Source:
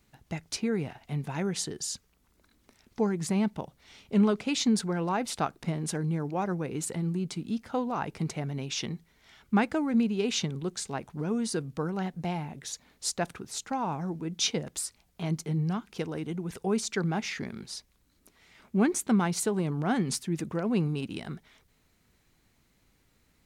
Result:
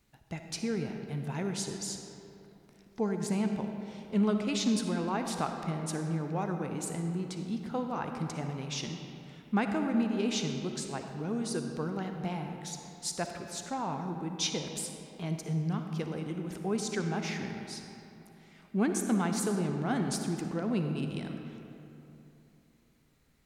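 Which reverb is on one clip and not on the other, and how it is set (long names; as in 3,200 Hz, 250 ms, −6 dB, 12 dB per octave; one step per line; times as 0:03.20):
comb and all-pass reverb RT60 3.1 s, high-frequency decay 0.55×, pre-delay 15 ms, DRR 4.5 dB
level −4 dB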